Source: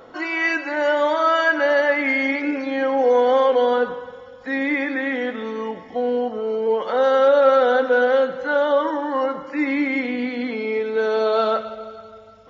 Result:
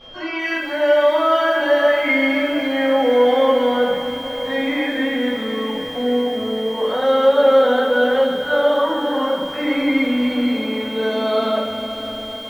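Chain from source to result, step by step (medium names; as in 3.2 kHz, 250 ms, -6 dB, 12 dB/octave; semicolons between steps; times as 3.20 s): small samples zeroed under -43.5 dBFS; tone controls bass +5 dB, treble +13 dB; whistle 3.2 kHz -38 dBFS; distance through air 240 m; echo that smears into a reverb 561 ms, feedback 65%, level -13 dB; simulated room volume 58 m³, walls mixed, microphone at 1.7 m; bit-crushed delay 255 ms, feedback 80%, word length 5-bit, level -14 dB; trim -8 dB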